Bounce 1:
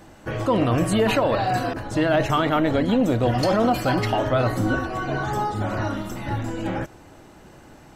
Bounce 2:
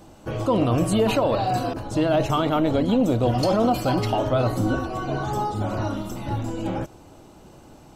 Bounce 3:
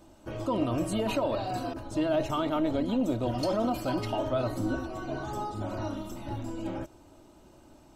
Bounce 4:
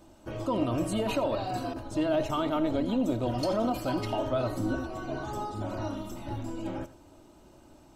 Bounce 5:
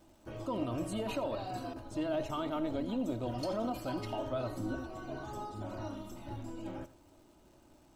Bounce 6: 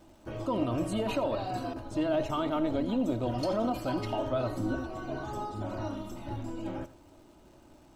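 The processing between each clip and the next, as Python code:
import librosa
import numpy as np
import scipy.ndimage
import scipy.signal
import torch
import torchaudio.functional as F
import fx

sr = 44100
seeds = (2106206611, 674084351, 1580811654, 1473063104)

y1 = fx.peak_eq(x, sr, hz=1800.0, db=-11.0, octaves=0.63)
y2 = y1 + 0.4 * np.pad(y1, (int(3.2 * sr / 1000.0), 0))[:len(y1)]
y2 = y2 * 10.0 ** (-8.5 / 20.0)
y3 = y2 + 10.0 ** (-16.0 / 20.0) * np.pad(y2, (int(84 * sr / 1000.0), 0))[:len(y2)]
y4 = fx.dmg_crackle(y3, sr, seeds[0], per_s=460.0, level_db=-53.0)
y4 = y4 * 10.0 ** (-7.0 / 20.0)
y5 = fx.high_shelf(y4, sr, hz=5900.0, db=-5.0)
y5 = y5 * 10.0 ** (5.5 / 20.0)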